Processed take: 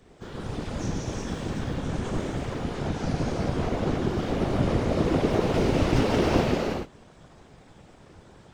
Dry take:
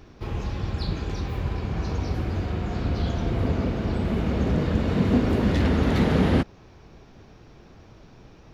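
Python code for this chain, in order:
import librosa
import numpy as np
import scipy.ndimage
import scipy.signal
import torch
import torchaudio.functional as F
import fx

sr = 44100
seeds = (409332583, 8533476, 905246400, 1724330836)

y = fx.rev_gated(x, sr, seeds[0], gate_ms=450, shape='flat', drr_db=-5.5)
y = fx.whisperise(y, sr, seeds[1])
y = fx.formant_shift(y, sr, semitones=6)
y = y * 10.0 ** (-8.0 / 20.0)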